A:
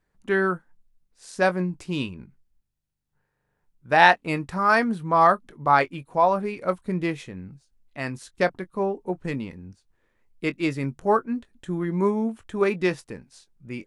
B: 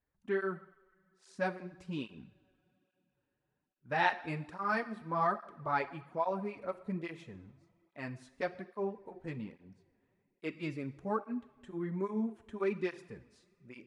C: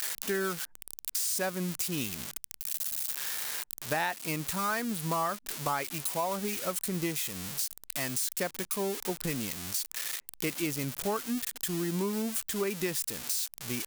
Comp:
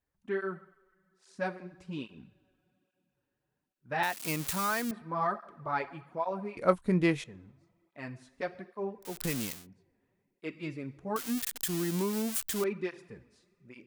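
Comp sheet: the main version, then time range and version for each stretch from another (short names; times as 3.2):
B
4.03–4.91 from C
6.57–7.24 from A
9.12–9.55 from C, crossfade 0.24 s
11.16–12.64 from C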